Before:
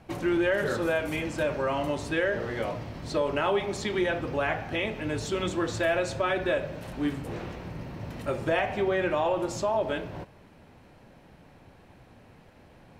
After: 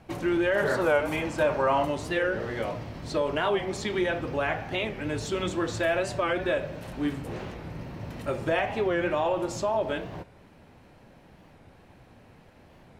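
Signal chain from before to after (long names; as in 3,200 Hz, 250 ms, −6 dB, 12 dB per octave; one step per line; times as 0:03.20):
0:00.55–0:01.85: dynamic equaliser 910 Hz, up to +8 dB, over −43 dBFS, Q 1.1
wow of a warped record 45 rpm, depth 160 cents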